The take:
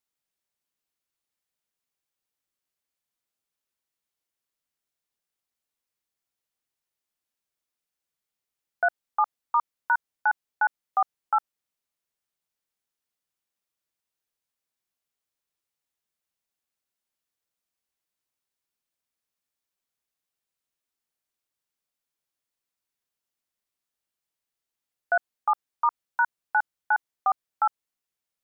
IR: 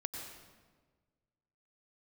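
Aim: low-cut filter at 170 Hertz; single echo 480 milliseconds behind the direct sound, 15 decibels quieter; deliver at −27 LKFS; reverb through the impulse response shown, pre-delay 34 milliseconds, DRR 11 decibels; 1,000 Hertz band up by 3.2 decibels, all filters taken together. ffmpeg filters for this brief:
-filter_complex "[0:a]highpass=170,equalizer=frequency=1000:width_type=o:gain=4,aecho=1:1:480:0.178,asplit=2[link_01][link_02];[1:a]atrim=start_sample=2205,adelay=34[link_03];[link_02][link_03]afir=irnorm=-1:irlink=0,volume=-11dB[link_04];[link_01][link_04]amix=inputs=2:normalize=0,volume=-3dB"

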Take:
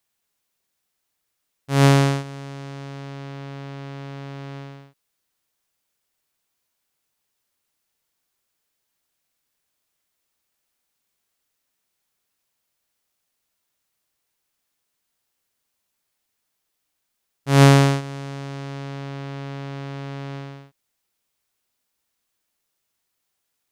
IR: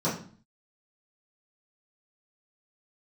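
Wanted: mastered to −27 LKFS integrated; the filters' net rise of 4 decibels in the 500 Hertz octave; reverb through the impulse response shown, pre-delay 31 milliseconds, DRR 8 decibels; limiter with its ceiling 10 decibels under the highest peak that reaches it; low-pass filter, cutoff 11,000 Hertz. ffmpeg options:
-filter_complex "[0:a]lowpass=11000,equalizer=frequency=500:width_type=o:gain=5,alimiter=limit=-11.5dB:level=0:latency=1,asplit=2[link_01][link_02];[1:a]atrim=start_sample=2205,adelay=31[link_03];[link_02][link_03]afir=irnorm=-1:irlink=0,volume=-19dB[link_04];[link_01][link_04]amix=inputs=2:normalize=0,volume=-1.5dB"

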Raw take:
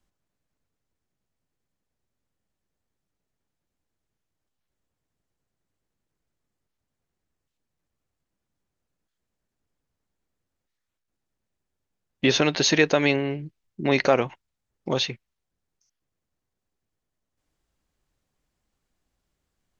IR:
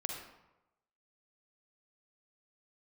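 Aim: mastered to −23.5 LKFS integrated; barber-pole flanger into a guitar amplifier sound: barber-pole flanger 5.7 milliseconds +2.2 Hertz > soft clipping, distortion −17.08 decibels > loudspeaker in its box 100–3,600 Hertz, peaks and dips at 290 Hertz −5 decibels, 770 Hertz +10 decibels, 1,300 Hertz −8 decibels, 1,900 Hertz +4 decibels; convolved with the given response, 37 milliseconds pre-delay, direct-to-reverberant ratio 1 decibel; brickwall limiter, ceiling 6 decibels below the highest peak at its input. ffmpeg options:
-filter_complex "[0:a]alimiter=limit=-11dB:level=0:latency=1,asplit=2[link_01][link_02];[1:a]atrim=start_sample=2205,adelay=37[link_03];[link_02][link_03]afir=irnorm=-1:irlink=0,volume=-2dB[link_04];[link_01][link_04]amix=inputs=2:normalize=0,asplit=2[link_05][link_06];[link_06]adelay=5.7,afreqshift=2.2[link_07];[link_05][link_07]amix=inputs=2:normalize=1,asoftclip=threshold=-16.5dB,highpass=100,equalizer=frequency=290:width_type=q:width=4:gain=-5,equalizer=frequency=770:width_type=q:width=4:gain=10,equalizer=frequency=1300:width_type=q:width=4:gain=-8,equalizer=frequency=1900:width_type=q:width=4:gain=4,lowpass=frequency=3600:width=0.5412,lowpass=frequency=3600:width=1.3066,volume=4dB"

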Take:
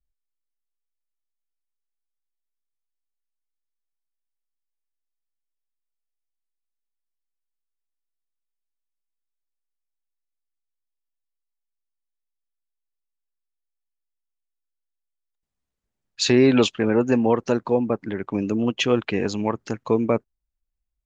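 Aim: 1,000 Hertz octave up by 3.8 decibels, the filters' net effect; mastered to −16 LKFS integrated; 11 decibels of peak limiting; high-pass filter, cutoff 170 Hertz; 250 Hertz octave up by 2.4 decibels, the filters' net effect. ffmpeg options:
ffmpeg -i in.wav -af "highpass=170,equalizer=frequency=250:width_type=o:gain=3.5,equalizer=frequency=1000:width_type=o:gain=4.5,volume=9dB,alimiter=limit=-5.5dB:level=0:latency=1" out.wav

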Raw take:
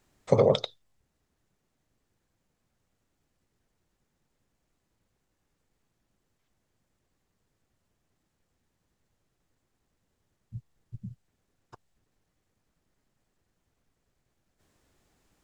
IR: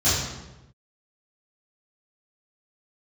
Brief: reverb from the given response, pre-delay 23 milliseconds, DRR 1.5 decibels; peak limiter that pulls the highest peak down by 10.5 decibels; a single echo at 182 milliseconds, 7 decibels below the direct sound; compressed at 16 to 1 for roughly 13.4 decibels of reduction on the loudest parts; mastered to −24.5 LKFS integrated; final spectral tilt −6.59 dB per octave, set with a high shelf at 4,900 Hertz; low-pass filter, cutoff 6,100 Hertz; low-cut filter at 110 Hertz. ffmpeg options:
-filter_complex "[0:a]highpass=110,lowpass=6100,highshelf=frequency=4900:gain=-4,acompressor=threshold=-29dB:ratio=16,alimiter=level_in=3dB:limit=-24dB:level=0:latency=1,volume=-3dB,aecho=1:1:182:0.447,asplit=2[link_01][link_02];[1:a]atrim=start_sample=2205,adelay=23[link_03];[link_02][link_03]afir=irnorm=-1:irlink=0,volume=-18dB[link_04];[link_01][link_04]amix=inputs=2:normalize=0,volume=16dB"

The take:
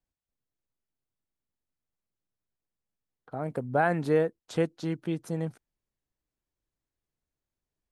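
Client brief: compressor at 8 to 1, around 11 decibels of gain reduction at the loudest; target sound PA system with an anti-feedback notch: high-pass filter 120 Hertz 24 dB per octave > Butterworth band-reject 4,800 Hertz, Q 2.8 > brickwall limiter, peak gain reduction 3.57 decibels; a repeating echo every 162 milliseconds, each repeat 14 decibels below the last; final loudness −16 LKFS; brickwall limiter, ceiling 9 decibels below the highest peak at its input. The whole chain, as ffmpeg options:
ffmpeg -i in.wav -af "acompressor=threshold=-31dB:ratio=8,alimiter=level_in=4.5dB:limit=-24dB:level=0:latency=1,volume=-4.5dB,highpass=frequency=120:width=0.5412,highpass=frequency=120:width=1.3066,asuperstop=centerf=4800:order=8:qfactor=2.8,aecho=1:1:162|324:0.2|0.0399,volume=26dB,alimiter=limit=-5dB:level=0:latency=1" out.wav

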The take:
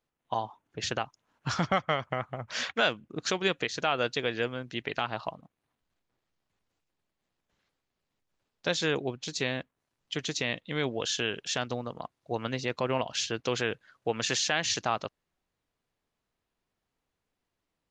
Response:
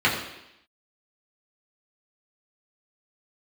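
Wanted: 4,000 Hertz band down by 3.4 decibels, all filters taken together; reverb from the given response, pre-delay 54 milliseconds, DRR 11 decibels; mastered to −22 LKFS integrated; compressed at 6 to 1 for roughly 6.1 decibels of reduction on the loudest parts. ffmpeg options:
-filter_complex "[0:a]equalizer=frequency=4000:width_type=o:gain=-4.5,acompressor=threshold=-29dB:ratio=6,asplit=2[link_01][link_02];[1:a]atrim=start_sample=2205,adelay=54[link_03];[link_02][link_03]afir=irnorm=-1:irlink=0,volume=-29dB[link_04];[link_01][link_04]amix=inputs=2:normalize=0,volume=13.5dB"

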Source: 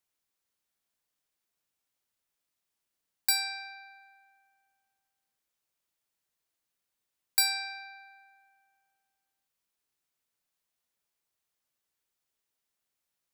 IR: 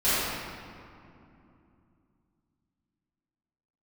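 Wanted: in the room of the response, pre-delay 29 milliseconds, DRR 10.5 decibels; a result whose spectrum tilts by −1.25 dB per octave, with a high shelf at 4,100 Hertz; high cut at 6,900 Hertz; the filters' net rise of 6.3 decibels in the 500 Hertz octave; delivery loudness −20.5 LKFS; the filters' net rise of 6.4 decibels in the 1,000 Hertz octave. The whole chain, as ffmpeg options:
-filter_complex "[0:a]lowpass=6900,equalizer=frequency=500:width_type=o:gain=6,equalizer=frequency=1000:width_type=o:gain=6,highshelf=frequency=4100:gain=3.5,asplit=2[link_01][link_02];[1:a]atrim=start_sample=2205,adelay=29[link_03];[link_02][link_03]afir=irnorm=-1:irlink=0,volume=-26.5dB[link_04];[link_01][link_04]amix=inputs=2:normalize=0,volume=9.5dB"

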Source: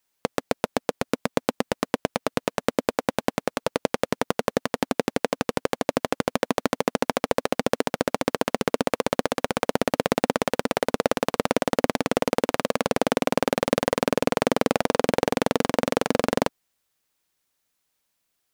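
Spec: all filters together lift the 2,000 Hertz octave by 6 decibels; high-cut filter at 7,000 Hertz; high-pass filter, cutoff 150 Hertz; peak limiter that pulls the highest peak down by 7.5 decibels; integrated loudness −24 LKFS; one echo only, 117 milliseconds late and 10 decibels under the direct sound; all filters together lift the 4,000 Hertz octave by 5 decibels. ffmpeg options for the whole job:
ffmpeg -i in.wav -af "highpass=150,lowpass=7000,equalizer=frequency=2000:width_type=o:gain=6.5,equalizer=frequency=4000:width_type=o:gain=4.5,alimiter=limit=-6dB:level=0:latency=1,aecho=1:1:117:0.316,volume=5dB" out.wav

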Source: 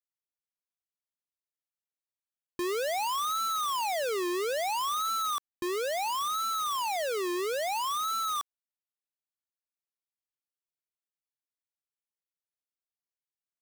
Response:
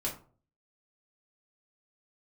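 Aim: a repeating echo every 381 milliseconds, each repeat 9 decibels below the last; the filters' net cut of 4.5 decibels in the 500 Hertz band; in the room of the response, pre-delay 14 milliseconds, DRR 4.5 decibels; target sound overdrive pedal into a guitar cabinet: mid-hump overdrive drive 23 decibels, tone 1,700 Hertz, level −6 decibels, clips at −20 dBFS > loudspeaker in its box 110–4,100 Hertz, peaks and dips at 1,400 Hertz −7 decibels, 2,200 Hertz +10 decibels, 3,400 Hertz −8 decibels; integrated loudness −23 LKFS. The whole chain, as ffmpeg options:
-filter_complex "[0:a]equalizer=frequency=500:width_type=o:gain=-6,aecho=1:1:381|762|1143|1524:0.355|0.124|0.0435|0.0152,asplit=2[link_01][link_02];[1:a]atrim=start_sample=2205,adelay=14[link_03];[link_02][link_03]afir=irnorm=-1:irlink=0,volume=-8dB[link_04];[link_01][link_04]amix=inputs=2:normalize=0,asplit=2[link_05][link_06];[link_06]highpass=frequency=720:poles=1,volume=23dB,asoftclip=type=tanh:threshold=-20dB[link_07];[link_05][link_07]amix=inputs=2:normalize=0,lowpass=frequency=1700:poles=1,volume=-6dB,highpass=110,equalizer=frequency=1400:width_type=q:width=4:gain=-7,equalizer=frequency=2200:width_type=q:width=4:gain=10,equalizer=frequency=3400:width_type=q:width=4:gain=-8,lowpass=frequency=4100:width=0.5412,lowpass=frequency=4100:width=1.3066,volume=5.5dB"

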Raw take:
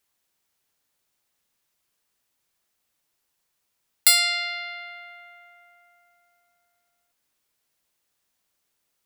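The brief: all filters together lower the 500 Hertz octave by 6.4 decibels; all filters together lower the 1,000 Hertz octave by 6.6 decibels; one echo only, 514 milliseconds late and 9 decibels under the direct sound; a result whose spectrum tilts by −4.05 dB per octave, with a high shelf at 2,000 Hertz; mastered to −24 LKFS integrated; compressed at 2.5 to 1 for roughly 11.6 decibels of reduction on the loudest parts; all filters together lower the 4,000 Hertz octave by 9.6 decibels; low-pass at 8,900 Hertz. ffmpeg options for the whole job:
ffmpeg -i in.wav -af "lowpass=8900,equalizer=frequency=500:width_type=o:gain=-3.5,equalizer=frequency=1000:width_type=o:gain=-8,highshelf=frequency=2000:gain=-5.5,equalizer=frequency=4000:width_type=o:gain=-5.5,acompressor=threshold=-39dB:ratio=2.5,aecho=1:1:514:0.355,volume=16dB" out.wav

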